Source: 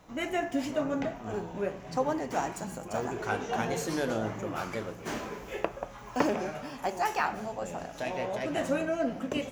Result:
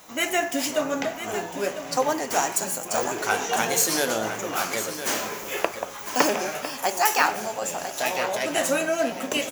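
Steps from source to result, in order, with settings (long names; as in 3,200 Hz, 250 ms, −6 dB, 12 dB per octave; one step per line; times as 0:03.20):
RIAA equalisation recording
single-tap delay 1,003 ms −11 dB
level +7.5 dB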